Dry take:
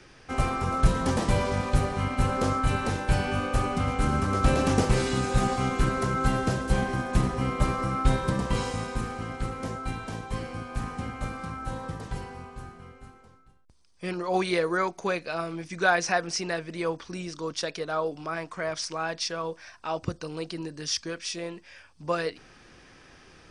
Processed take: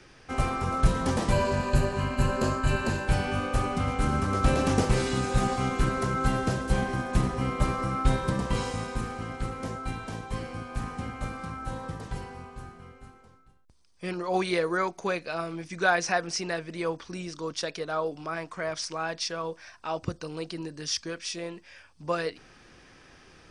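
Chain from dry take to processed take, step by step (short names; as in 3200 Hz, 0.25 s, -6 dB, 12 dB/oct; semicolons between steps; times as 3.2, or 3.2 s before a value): 1.32–3.08 ripple EQ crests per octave 1.4, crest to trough 10 dB; gain -1 dB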